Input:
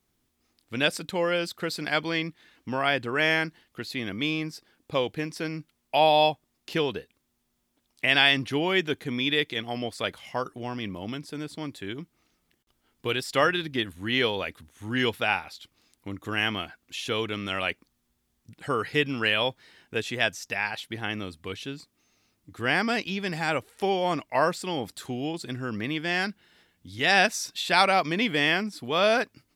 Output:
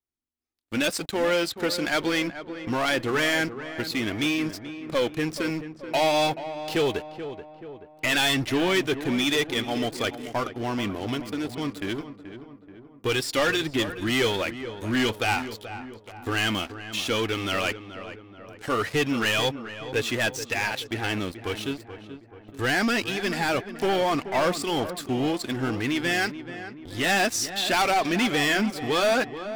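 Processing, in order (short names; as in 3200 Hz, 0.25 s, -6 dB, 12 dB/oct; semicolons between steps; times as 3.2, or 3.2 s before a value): 15.45–16.2 Bessel high-pass 1300 Hz, order 2; sample leveller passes 5; flange 1.9 Hz, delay 2.3 ms, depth 1.4 ms, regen -46%; darkening echo 0.431 s, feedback 54%, low-pass 1800 Hz, level -11 dB; gain -8.5 dB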